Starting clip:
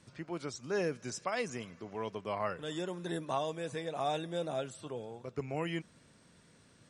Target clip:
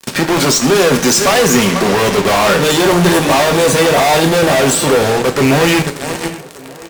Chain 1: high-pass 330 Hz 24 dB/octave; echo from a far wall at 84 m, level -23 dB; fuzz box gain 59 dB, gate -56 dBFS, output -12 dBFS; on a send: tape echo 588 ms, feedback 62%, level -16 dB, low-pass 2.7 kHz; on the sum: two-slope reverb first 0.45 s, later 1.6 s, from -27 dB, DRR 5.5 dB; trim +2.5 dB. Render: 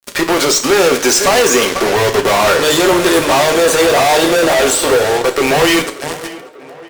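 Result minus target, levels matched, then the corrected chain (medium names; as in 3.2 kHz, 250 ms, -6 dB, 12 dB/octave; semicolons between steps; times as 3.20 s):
125 Hz band -9.0 dB
high-pass 160 Hz 24 dB/octave; echo from a far wall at 84 m, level -23 dB; fuzz box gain 59 dB, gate -56 dBFS, output -12 dBFS; on a send: tape echo 588 ms, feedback 62%, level -16 dB, low-pass 2.7 kHz; on the sum: two-slope reverb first 0.45 s, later 1.6 s, from -27 dB, DRR 5.5 dB; trim +2.5 dB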